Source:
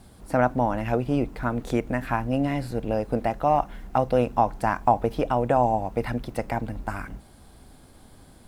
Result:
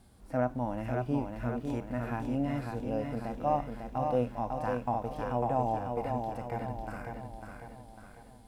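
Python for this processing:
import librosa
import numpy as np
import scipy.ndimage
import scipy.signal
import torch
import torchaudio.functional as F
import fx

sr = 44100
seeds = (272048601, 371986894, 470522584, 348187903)

y = fx.echo_feedback(x, sr, ms=549, feedback_pct=47, wet_db=-5)
y = fx.hpss(y, sr, part='percussive', gain_db=-13)
y = y * librosa.db_to_amplitude(-6.0)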